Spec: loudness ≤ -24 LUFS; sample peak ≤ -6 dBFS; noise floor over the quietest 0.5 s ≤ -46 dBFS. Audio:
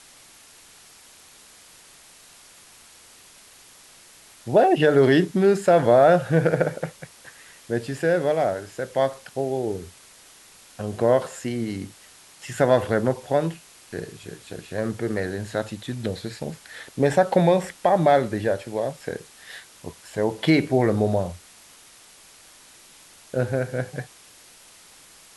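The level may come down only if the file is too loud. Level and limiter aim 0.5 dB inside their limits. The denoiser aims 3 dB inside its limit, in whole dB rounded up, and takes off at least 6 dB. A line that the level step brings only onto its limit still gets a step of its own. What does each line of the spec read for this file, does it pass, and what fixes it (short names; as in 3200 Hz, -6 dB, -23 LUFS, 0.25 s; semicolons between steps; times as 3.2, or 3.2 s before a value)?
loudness -22.5 LUFS: fail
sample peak -5.5 dBFS: fail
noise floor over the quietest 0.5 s -50 dBFS: OK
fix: gain -2 dB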